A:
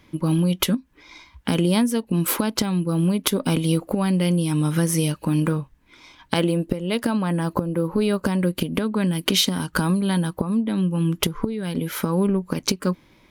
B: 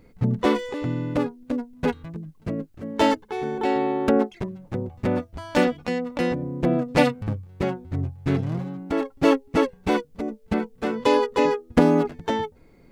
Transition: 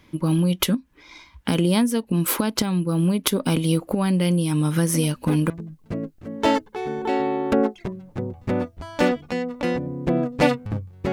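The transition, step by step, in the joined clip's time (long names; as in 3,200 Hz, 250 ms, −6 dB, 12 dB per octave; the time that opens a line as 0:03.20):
A
0:04.89: mix in B from 0:01.45 0.61 s −6 dB
0:05.50: continue with B from 0:02.06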